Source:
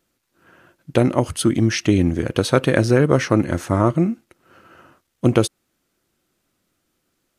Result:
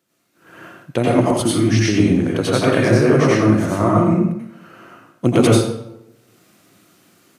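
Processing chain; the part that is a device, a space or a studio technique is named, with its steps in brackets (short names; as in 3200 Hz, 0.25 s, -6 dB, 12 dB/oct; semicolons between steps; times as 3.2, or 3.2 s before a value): far laptop microphone (reverb RT60 0.75 s, pre-delay 81 ms, DRR -5.5 dB; HPF 100 Hz 24 dB/oct; AGC gain up to 12.5 dB); gain -1 dB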